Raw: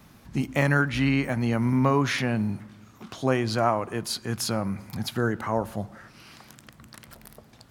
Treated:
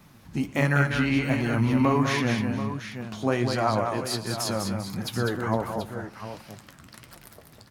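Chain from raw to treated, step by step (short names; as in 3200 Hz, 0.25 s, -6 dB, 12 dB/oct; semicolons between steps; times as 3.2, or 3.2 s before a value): tapped delay 0.113/0.199/0.459/0.732 s -19/-5.5/-18.5/-11 dB; 1.31–2.01 transient shaper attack -1 dB, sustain +7 dB; flange 1.4 Hz, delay 5.2 ms, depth 7.4 ms, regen +54%; gain +3 dB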